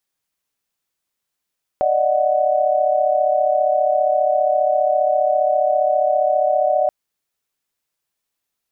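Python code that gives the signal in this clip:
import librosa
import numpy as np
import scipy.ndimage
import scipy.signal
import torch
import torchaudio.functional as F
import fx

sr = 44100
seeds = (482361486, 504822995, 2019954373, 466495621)

y = fx.chord(sr, length_s=5.08, notes=(74, 75, 78), wave='sine', level_db=-18.5)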